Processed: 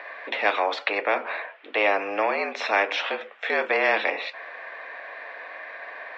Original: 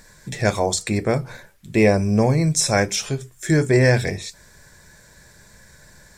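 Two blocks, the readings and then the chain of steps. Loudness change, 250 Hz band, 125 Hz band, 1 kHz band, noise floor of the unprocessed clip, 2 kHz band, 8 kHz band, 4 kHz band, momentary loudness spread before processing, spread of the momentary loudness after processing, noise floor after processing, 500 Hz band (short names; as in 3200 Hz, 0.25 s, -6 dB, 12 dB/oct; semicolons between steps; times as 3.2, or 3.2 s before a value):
-5.0 dB, -17.5 dB, under -40 dB, +3.0 dB, -51 dBFS, +2.5 dB, under -25 dB, -3.5 dB, 13 LU, 15 LU, -46 dBFS, -5.0 dB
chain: mistuned SSB +95 Hz 410–2800 Hz; spectral compressor 2:1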